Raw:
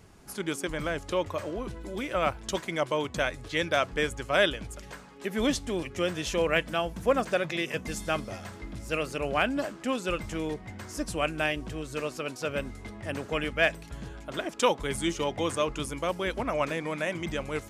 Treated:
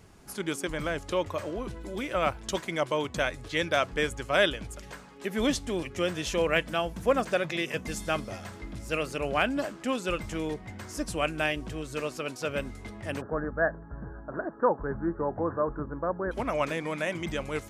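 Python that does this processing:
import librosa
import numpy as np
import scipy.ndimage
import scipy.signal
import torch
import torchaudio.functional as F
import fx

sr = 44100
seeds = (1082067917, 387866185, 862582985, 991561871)

y = fx.steep_lowpass(x, sr, hz=1700.0, slope=96, at=(13.2, 16.31), fade=0.02)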